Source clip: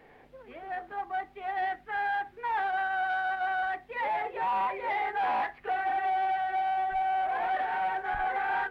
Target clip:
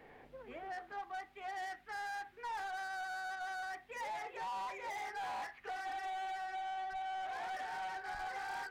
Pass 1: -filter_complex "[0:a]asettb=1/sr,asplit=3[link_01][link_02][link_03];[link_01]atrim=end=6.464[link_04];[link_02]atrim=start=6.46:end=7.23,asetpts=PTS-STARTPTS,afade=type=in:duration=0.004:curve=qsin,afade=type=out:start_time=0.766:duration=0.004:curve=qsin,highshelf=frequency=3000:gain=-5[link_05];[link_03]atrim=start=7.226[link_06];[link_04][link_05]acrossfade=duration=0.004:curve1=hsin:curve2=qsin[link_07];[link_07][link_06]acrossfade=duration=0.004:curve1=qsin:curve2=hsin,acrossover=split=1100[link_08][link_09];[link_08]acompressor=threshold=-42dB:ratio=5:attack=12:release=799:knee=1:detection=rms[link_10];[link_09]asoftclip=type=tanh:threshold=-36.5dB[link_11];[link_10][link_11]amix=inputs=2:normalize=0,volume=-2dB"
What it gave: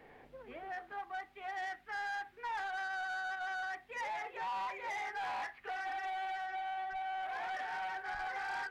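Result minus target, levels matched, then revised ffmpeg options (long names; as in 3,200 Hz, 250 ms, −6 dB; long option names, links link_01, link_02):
soft clipping: distortion −6 dB
-filter_complex "[0:a]asettb=1/sr,asplit=3[link_01][link_02][link_03];[link_01]atrim=end=6.464[link_04];[link_02]atrim=start=6.46:end=7.23,asetpts=PTS-STARTPTS,afade=type=in:duration=0.004:curve=qsin,afade=type=out:start_time=0.766:duration=0.004:curve=qsin,highshelf=frequency=3000:gain=-5[link_05];[link_03]atrim=start=7.226[link_06];[link_04][link_05]acrossfade=duration=0.004:curve1=hsin:curve2=qsin[link_07];[link_07][link_06]acrossfade=duration=0.004:curve1=qsin:curve2=hsin,acrossover=split=1100[link_08][link_09];[link_08]acompressor=threshold=-42dB:ratio=5:attack=12:release=799:knee=1:detection=rms[link_10];[link_09]asoftclip=type=tanh:threshold=-43.5dB[link_11];[link_10][link_11]amix=inputs=2:normalize=0,volume=-2dB"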